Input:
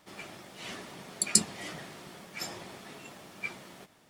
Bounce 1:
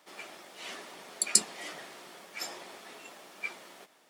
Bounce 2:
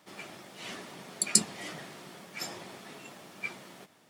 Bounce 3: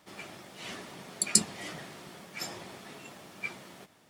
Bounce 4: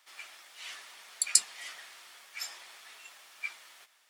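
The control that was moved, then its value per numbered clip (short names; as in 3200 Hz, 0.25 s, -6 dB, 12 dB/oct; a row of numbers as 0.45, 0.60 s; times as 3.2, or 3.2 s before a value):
HPF, cutoff: 370, 120, 49, 1400 Hz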